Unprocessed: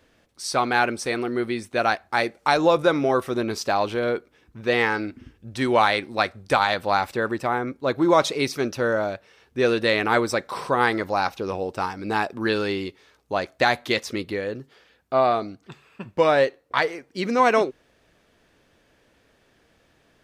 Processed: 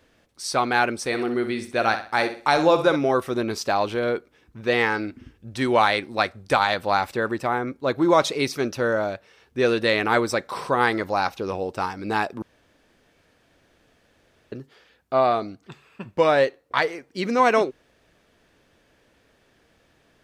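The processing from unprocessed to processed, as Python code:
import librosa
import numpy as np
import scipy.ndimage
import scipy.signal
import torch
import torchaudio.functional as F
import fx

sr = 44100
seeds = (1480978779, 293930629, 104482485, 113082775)

y = fx.room_flutter(x, sr, wall_m=10.7, rt60_s=0.39, at=(1.07, 2.96))
y = fx.edit(y, sr, fx.room_tone_fill(start_s=12.42, length_s=2.1), tone=tone)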